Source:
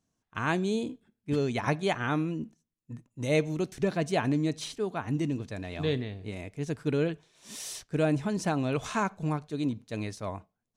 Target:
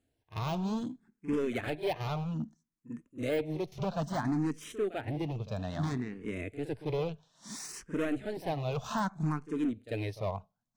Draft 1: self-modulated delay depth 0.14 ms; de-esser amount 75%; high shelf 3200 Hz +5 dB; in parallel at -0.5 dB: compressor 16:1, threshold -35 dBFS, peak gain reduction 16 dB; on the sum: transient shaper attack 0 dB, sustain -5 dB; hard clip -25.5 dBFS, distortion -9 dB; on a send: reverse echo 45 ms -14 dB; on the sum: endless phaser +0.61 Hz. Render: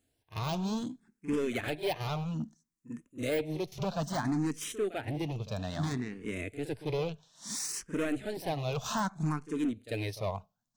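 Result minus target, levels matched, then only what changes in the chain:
8000 Hz band +7.5 dB
change: high shelf 3200 Hz -4.5 dB

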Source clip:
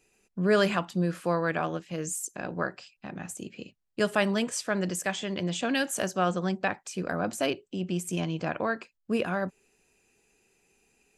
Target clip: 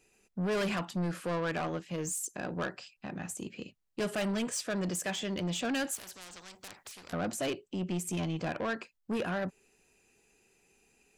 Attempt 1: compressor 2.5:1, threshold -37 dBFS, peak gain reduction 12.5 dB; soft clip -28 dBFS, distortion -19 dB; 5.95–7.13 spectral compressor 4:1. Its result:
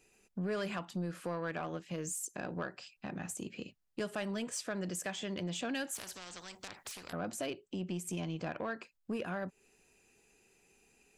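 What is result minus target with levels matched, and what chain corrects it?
compressor: peak gain reduction +12.5 dB
soft clip -28 dBFS, distortion -8 dB; 5.95–7.13 spectral compressor 4:1

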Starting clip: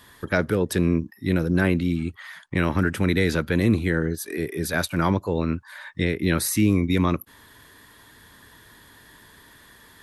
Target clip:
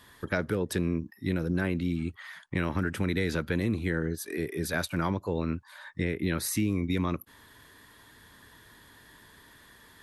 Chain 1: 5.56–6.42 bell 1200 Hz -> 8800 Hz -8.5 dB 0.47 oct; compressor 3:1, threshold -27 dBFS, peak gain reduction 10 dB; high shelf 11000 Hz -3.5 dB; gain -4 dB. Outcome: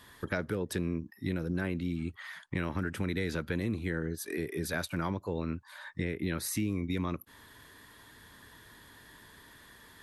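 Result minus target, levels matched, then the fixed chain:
compressor: peak gain reduction +4.5 dB
5.56–6.42 bell 1200 Hz -> 8800 Hz -8.5 dB 0.47 oct; compressor 3:1, threshold -20.5 dBFS, peak gain reduction 6 dB; high shelf 11000 Hz -3.5 dB; gain -4 dB

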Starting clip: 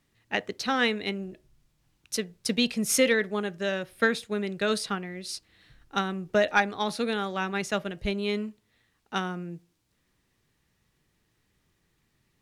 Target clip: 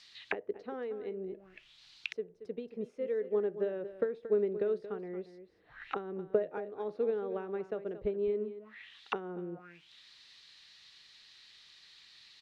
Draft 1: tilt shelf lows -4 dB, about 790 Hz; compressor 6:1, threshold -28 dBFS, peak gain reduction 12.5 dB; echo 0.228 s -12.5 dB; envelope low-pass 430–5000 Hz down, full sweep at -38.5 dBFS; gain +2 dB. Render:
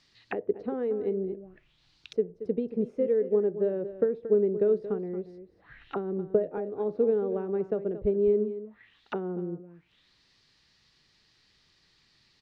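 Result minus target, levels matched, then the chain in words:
1000 Hz band -6.0 dB
tilt shelf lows -14 dB, about 790 Hz; compressor 6:1, threshold -28 dBFS, peak gain reduction 18 dB; echo 0.228 s -12.5 dB; envelope low-pass 430–5000 Hz down, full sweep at -38.5 dBFS; gain +2 dB

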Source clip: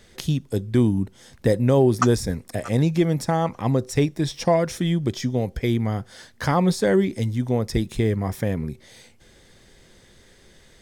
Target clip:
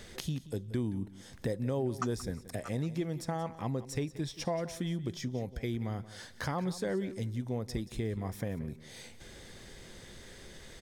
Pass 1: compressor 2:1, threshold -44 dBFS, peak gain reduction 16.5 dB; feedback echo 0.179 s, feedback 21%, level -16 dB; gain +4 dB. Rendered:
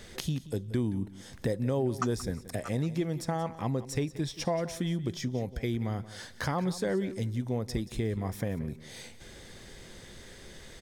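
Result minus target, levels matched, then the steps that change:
compressor: peak gain reduction -3.5 dB
change: compressor 2:1, threshold -51 dBFS, peak gain reduction 20 dB

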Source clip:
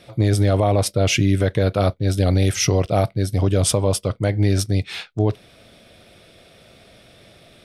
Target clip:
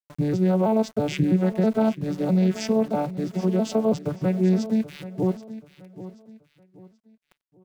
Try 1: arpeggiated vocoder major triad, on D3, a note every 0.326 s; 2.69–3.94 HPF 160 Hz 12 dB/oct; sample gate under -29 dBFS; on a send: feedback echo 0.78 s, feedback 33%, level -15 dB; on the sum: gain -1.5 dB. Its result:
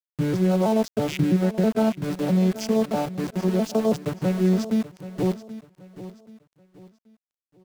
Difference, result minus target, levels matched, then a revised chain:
sample gate: distortion +11 dB
arpeggiated vocoder major triad, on D3, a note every 0.326 s; 2.69–3.94 HPF 160 Hz 12 dB/oct; sample gate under -40 dBFS; on a send: feedback echo 0.78 s, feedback 33%, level -15 dB; on the sum: gain -1.5 dB

